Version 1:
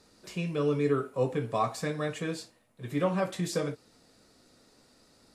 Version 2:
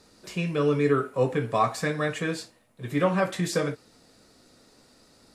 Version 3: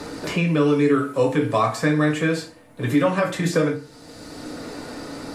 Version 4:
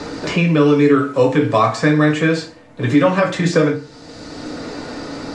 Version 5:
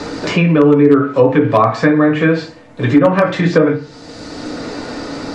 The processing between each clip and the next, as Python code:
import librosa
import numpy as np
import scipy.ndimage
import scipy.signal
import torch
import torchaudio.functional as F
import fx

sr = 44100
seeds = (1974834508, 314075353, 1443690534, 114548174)

y1 = fx.dynamic_eq(x, sr, hz=1700.0, q=1.4, threshold_db=-51.0, ratio=4.0, max_db=5)
y1 = F.gain(torch.from_numpy(y1), 4.0).numpy()
y2 = fx.rev_fdn(y1, sr, rt60_s=0.33, lf_ratio=1.05, hf_ratio=0.75, size_ms=20.0, drr_db=2.5)
y2 = fx.band_squash(y2, sr, depth_pct=70)
y2 = F.gain(torch.from_numpy(y2), 3.0).numpy()
y3 = scipy.signal.sosfilt(scipy.signal.butter(4, 7100.0, 'lowpass', fs=sr, output='sos'), y2)
y3 = F.gain(torch.from_numpy(y3), 5.5).numpy()
y4 = fx.env_lowpass_down(y3, sr, base_hz=1200.0, full_db=-8.5)
y4 = fx.hum_notches(y4, sr, base_hz=50, count=3)
y4 = 10.0 ** (-4.5 / 20.0) * (np.abs((y4 / 10.0 ** (-4.5 / 20.0) + 3.0) % 4.0 - 2.0) - 1.0)
y4 = F.gain(torch.from_numpy(y4), 3.5).numpy()